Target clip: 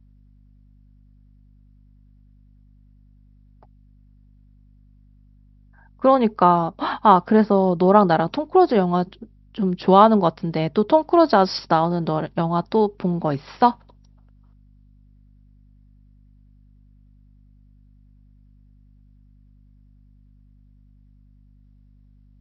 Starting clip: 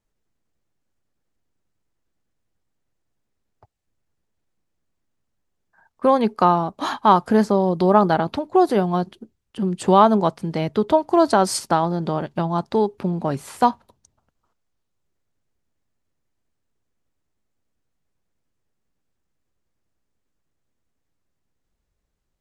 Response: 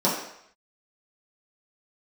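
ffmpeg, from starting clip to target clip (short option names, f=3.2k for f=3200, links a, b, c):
-filter_complex "[0:a]asettb=1/sr,asplit=3[a][b][c];[a]atrim=end=6.154[d];[b]atrim=start=6.15:end=7.88,asetpts=PTS-STARTPTS,afade=t=in:d=0.004:c=qsin,afade=t=out:st=1.726:d=0.004:c=qsin,acrossover=split=3700[e][f];[f]acompressor=threshold=-54dB:ratio=4:attack=1:release=60[g];[e][g]amix=inputs=2:normalize=0[h];[c]atrim=start=7.876[i];[d][h]acrossfade=d=0.004:c1=hsin:c2=qsin[j];[j][i]acrossfade=d=0.004:c1=qsin:c2=hsin,afftfilt=real='re*between(b*sr/4096,110,5700)':imag='im*between(b*sr/4096,110,5700)':win_size=4096:overlap=0.75,aeval=exprs='val(0)+0.00251*(sin(2*PI*50*n/s)+sin(2*PI*2*50*n/s)/2+sin(2*PI*3*50*n/s)/3+sin(2*PI*4*50*n/s)/4+sin(2*PI*5*50*n/s)/5)':c=same,volume=1dB"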